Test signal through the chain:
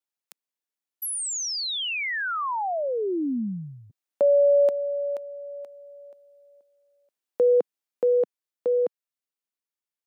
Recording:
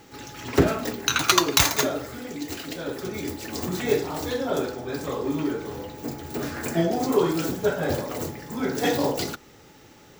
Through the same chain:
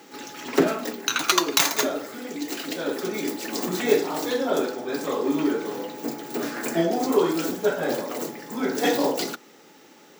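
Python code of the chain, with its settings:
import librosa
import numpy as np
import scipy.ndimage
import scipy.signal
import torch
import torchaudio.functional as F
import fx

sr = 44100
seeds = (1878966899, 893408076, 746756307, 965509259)

y = scipy.signal.sosfilt(scipy.signal.butter(4, 200.0, 'highpass', fs=sr, output='sos'), x)
y = fx.rider(y, sr, range_db=5, speed_s=2.0)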